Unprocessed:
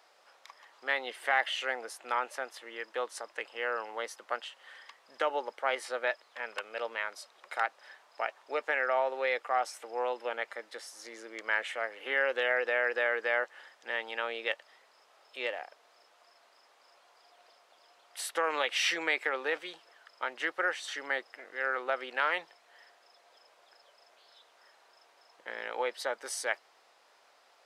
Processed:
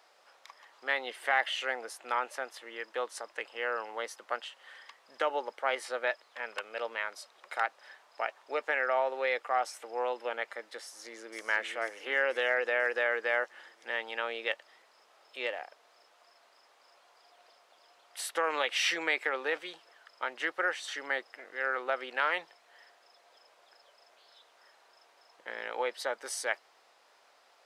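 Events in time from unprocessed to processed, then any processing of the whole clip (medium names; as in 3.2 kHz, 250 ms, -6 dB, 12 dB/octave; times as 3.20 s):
10.83–11.40 s: echo throw 490 ms, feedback 60%, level -6 dB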